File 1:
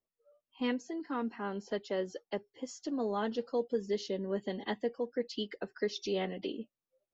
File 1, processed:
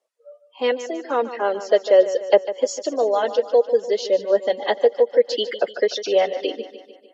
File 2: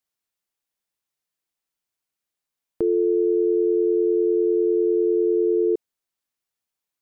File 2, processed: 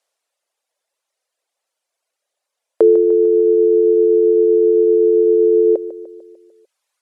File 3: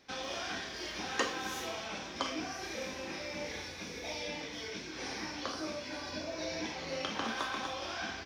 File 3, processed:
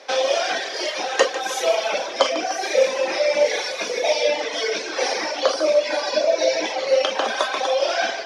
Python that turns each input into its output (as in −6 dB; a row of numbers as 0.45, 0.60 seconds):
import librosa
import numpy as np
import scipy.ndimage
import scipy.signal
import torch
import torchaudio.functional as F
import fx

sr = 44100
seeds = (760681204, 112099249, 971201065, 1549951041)

y = scipy.signal.sosfilt(scipy.signal.butter(4, 11000.0, 'lowpass', fs=sr, output='sos'), x)
y = fx.dereverb_blind(y, sr, rt60_s=1.8)
y = fx.dynamic_eq(y, sr, hz=1100.0, q=1.2, threshold_db=-50.0, ratio=4.0, max_db=-5)
y = fx.rider(y, sr, range_db=10, speed_s=0.5)
y = fx.highpass_res(y, sr, hz=560.0, q=3.4)
y = fx.echo_feedback(y, sr, ms=149, feedback_pct=54, wet_db=-13.0)
y = y * 10.0 ** (-2 / 20.0) / np.max(np.abs(y))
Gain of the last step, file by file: +14.0, +15.0, +17.0 decibels